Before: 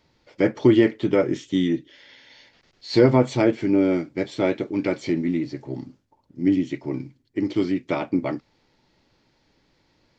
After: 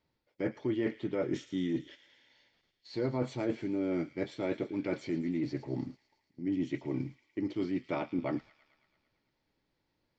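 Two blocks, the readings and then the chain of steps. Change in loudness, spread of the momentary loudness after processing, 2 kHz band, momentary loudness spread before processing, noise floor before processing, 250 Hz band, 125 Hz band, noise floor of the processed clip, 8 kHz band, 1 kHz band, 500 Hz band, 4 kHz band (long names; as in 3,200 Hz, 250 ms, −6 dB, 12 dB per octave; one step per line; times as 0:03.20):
−12.5 dB, 6 LU, −12.5 dB, 14 LU, −66 dBFS, −12.0 dB, −12.0 dB, −81 dBFS, can't be measured, −12.5 dB, −13.5 dB, −14.0 dB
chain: noise gate −43 dBFS, range −15 dB
high-shelf EQ 5,200 Hz −7 dB
reversed playback
downward compressor 5 to 1, threshold −31 dBFS, peak gain reduction 18.5 dB
reversed playback
delay with a high-pass on its return 111 ms, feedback 68%, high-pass 2,200 Hz, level −12 dB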